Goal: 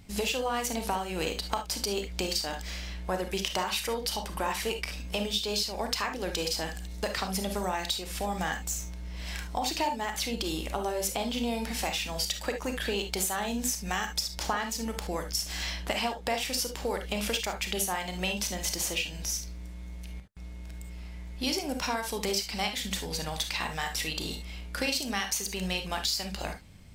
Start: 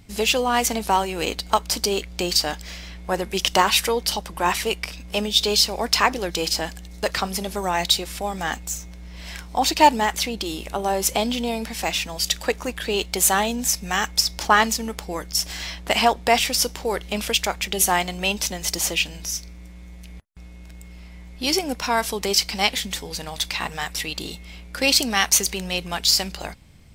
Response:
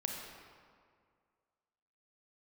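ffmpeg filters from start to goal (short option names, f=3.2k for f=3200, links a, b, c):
-filter_complex "[0:a]acompressor=threshold=-25dB:ratio=6[a];[1:a]atrim=start_sample=2205,atrim=end_sample=3528[b];[a][b]afir=irnorm=-1:irlink=0,volume=-2dB"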